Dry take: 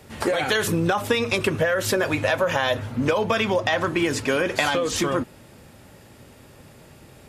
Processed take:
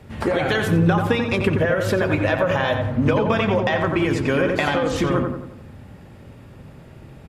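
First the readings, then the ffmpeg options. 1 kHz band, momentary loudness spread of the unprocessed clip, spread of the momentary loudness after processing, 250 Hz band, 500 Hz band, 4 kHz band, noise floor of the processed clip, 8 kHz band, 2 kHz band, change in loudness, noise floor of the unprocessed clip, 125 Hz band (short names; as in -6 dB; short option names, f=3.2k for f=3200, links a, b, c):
+1.5 dB, 3 LU, 4 LU, +5.0 dB, +2.0 dB, -3.0 dB, -43 dBFS, -9.0 dB, +0.5 dB, +2.5 dB, -49 dBFS, +8.0 dB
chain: -filter_complex "[0:a]bass=f=250:g=7,treble=f=4k:g=-10,asplit=2[a][b];[b]adelay=89,lowpass=f=2k:p=1,volume=-4dB,asplit=2[c][d];[d]adelay=89,lowpass=f=2k:p=1,volume=0.5,asplit=2[e][f];[f]adelay=89,lowpass=f=2k:p=1,volume=0.5,asplit=2[g][h];[h]adelay=89,lowpass=f=2k:p=1,volume=0.5,asplit=2[i][j];[j]adelay=89,lowpass=f=2k:p=1,volume=0.5,asplit=2[k][l];[l]adelay=89,lowpass=f=2k:p=1,volume=0.5[m];[a][c][e][g][i][k][m]amix=inputs=7:normalize=0"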